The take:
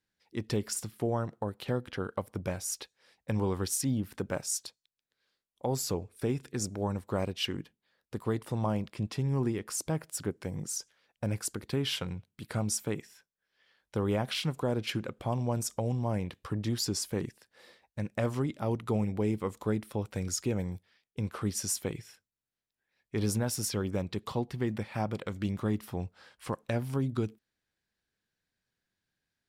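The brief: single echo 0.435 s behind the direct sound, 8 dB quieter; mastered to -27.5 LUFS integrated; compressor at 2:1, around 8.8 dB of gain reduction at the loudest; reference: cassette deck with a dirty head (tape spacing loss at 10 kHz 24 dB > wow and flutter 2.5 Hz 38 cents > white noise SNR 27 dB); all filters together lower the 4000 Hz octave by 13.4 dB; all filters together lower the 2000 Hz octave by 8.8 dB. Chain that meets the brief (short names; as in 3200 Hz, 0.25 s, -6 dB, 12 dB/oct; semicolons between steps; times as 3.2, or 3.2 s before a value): bell 2000 Hz -4.5 dB; bell 4000 Hz -4.5 dB; compressor 2:1, threshold -42 dBFS; tape spacing loss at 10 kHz 24 dB; echo 0.435 s -8 dB; wow and flutter 2.5 Hz 38 cents; white noise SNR 27 dB; gain +15.5 dB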